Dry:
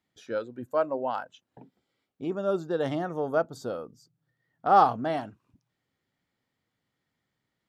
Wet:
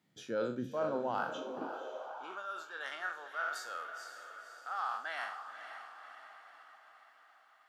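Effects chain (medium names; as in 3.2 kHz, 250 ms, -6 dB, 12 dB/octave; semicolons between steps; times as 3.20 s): spectral sustain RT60 0.45 s; reverse; compression 10:1, threshold -33 dBFS, peak gain reduction 20 dB; reverse; echo that smears into a reverb 524 ms, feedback 56%, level -9 dB; high-pass sweep 150 Hz -> 1.5 kHz, 1.26–2.50 s; trim +1.5 dB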